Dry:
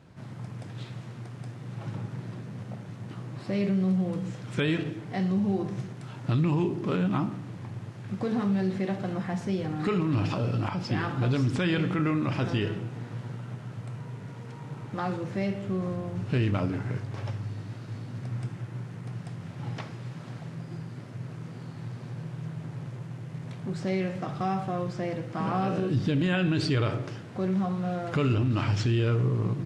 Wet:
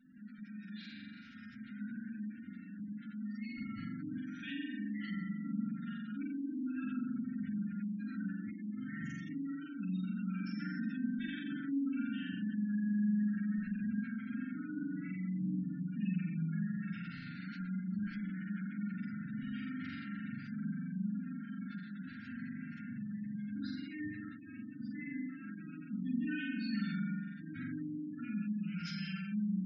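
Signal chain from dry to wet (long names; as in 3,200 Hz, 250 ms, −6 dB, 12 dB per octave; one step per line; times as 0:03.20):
source passing by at 0:12.98, 12 m/s, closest 11 metres
Butterworth low-pass 6,900 Hz 72 dB per octave
parametric band 75 Hz +2 dB 0.25 octaves
reversed playback
downward compressor 16 to 1, threshold −49 dBFS, peak gain reduction 24 dB
reversed playback
brickwall limiter −47 dBFS, peak gain reduction 7 dB
phase-vocoder pitch shift with formants kept +9.5 semitones
flanger 0.19 Hz, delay 3.9 ms, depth 7 ms, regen −31%
flutter between parallel walls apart 7.4 metres, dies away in 1.5 s
on a send at −6.5 dB: convolution reverb RT60 2.3 s, pre-delay 5 ms
on the sum: gate on every frequency bin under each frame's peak −25 dB strong
linear-phase brick-wall band-stop 300–1,300 Hz
level +16.5 dB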